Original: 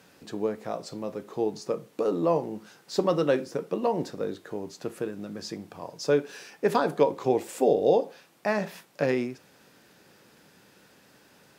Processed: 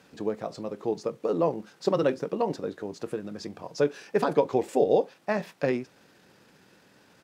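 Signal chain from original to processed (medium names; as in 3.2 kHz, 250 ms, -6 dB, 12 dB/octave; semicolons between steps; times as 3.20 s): treble shelf 10 kHz -10 dB; tempo 1.6×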